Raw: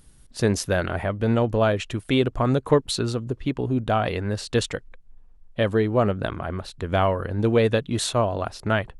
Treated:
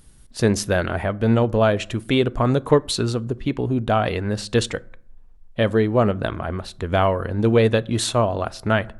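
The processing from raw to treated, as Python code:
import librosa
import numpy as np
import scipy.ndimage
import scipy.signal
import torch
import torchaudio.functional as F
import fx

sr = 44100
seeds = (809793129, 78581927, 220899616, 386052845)

y = fx.rev_fdn(x, sr, rt60_s=0.6, lf_ratio=1.25, hf_ratio=0.5, size_ms=27.0, drr_db=18.5)
y = y * 10.0 ** (2.5 / 20.0)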